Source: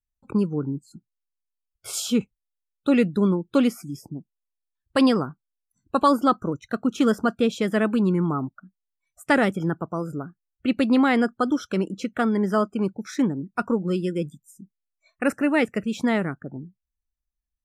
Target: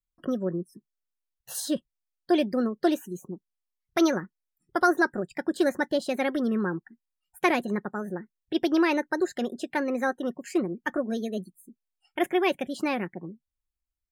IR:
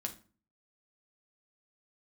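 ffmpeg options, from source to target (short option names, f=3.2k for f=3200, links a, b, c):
-af "asetrate=55125,aresample=44100,aecho=1:1:5.5:0.36,volume=-4.5dB"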